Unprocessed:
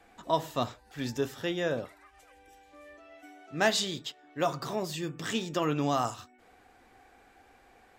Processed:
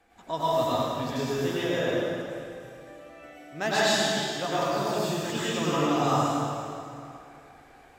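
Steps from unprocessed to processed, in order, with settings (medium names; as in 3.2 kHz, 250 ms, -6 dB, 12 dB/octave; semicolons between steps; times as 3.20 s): plate-style reverb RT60 2.6 s, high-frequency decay 0.8×, pre-delay 85 ms, DRR -10 dB; trim -5 dB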